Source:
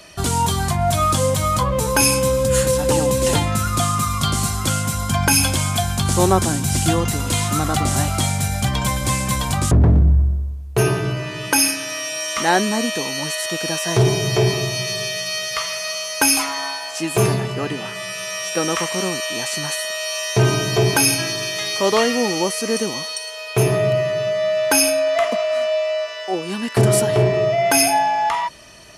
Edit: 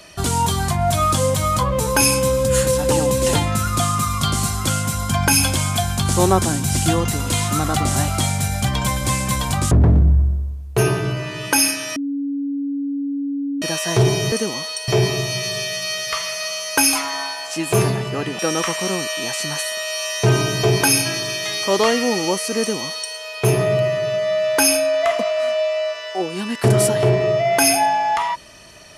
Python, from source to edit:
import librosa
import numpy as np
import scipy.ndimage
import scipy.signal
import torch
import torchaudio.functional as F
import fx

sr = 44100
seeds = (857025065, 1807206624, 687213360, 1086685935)

y = fx.edit(x, sr, fx.bleep(start_s=11.96, length_s=1.66, hz=281.0, db=-20.5),
    fx.cut(start_s=17.83, length_s=0.69),
    fx.duplicate(start_s=22.72, length_s=0.56, to_s=14.32), tone=tone)